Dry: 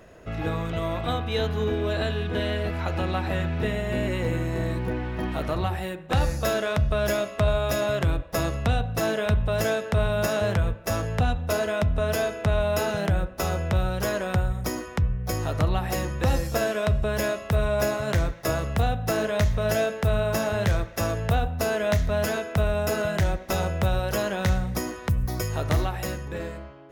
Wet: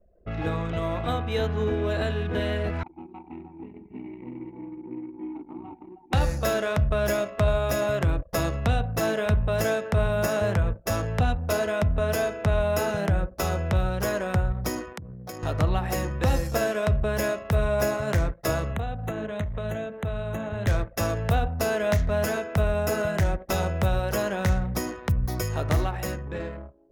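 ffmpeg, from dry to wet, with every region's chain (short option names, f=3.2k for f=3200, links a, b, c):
-filter_complex "[0:a]asettb=1/sr,asplit=3[a][b][c];[a]atrim=end=2.834[d];[b]atrim=start=2.83:end=6.13,asetpts=PTS-STARTPTS,afade=t=in:d=0.004:c=qsin,afade=t=out:st=3.296:d=0.004:c=qsin,asplit=3[e][f][g];[e]bandpass=f=300:t=q:w=8,volume=0dB[h];[f]bandpass=f=870:t=q:w=8,volume=-6dB[i];[g]bandpass=f=2.24k:t=q:w=8,volume=-9dB[j];[h][i][j]amix=inputs=3:normalize=0,aecho=1:1:71|99|163|317|838:0.251|0.299|0.237|0.631|0.224,atrim=end_sample=145530[k];[c]atrim=start=6.126[l];[d][k]acrossfade=d=0.004:c1=hsin:c2=qsin[m];[m][l]acrossfade=d=0.004:c1=qsin:c2=hsin,asettb=1/sr,asplit=3[n][o][p];[n]atrim=end=14.934[q];[o]atrim=start=14.93:end=15.43,asetpts=PTS-STARTPTS,afade=t=in:d=0.004:c=qsin,afade=t=out:st=0.496:d=0.004:c=qsin,highpass=190,acompressor=threshold=-35dB:ratio=3:attack=3.2:release=140:knee=1:detection=peak[r];[p]atrim=start=15.426[s];[q][r]acrossfade=d=0.004:c1=hsin:c2=qsin[t];[t][s]acrossfade=d=0.004:c1=qsin:c2=hsin,asettb=1/sr,asplit=3[u][v][w];[u]atrim=end=18.714[x];[v]atrim=start=18.71:end=20.67,asetpts=PTS-STARTPTS,afade=t=in:d=0.004:c=qsin,afade=t=out:st=1.956:d=0.004:c=qsin,acrossover=split=260|3800[y][z][aa];[y]acompressor=threshold=-29dB:ratio=4[ab];[z]acompressor=threshold=-33dB:ratio=4[ac];[aa]acompressor=threshold=-51dB:ratio=4[ad];[ab][ac][ad]amix=inputs=3:normalize=0,asuperstop=centerf=5000:order=12:qfactor=2.5[ae];[w]atrim=start=20.666[af];[x][ae]acrossfade=d=0.004:c1=hsin:c2=qsin[ag];[ag][af]acrossfade=d=0.004:c1=qsin:c2=hsin,anlmdn=0.631,adynamicequalizer=threshold=0.00398:dfrequency=3700:dqfactor=1.6:tfrequency=3700:tqfactor=1.6:attack=5:release=100:ratio=0.375:range=3:mode=cutabove:tftype=bell"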